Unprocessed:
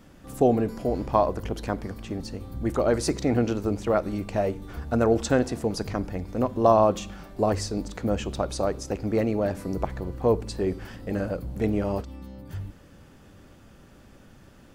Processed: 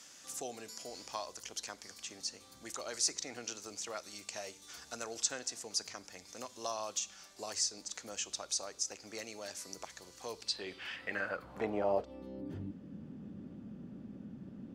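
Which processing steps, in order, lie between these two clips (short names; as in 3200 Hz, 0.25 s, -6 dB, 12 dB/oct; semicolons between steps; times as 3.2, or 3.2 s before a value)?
band-pass sweep 6300 Hz -> 210 Hz, 10.24–12.8; three-band squash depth 40%; gain +7.5 dB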